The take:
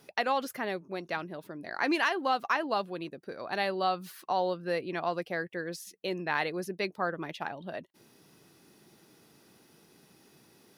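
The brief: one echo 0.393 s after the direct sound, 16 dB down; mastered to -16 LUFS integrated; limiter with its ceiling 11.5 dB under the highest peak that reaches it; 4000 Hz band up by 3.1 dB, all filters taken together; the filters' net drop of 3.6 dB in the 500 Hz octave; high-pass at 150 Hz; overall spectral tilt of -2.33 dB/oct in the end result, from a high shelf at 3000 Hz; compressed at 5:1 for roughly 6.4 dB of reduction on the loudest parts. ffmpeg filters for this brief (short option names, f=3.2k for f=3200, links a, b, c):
-af "highpass=150,equalizer=f=500:t=o:g=-4.5,highshelf=f=3k:g=-5,equalizer=f=4k:t=o:g=7.5,acompressor=threshold=-31dB:ratio=5,alimiter=level_in=1.5dB:limit=-24dB:level=0:latency=1,volume=-1.5dB,aecho=1:1:393:0.158,volume=23dB"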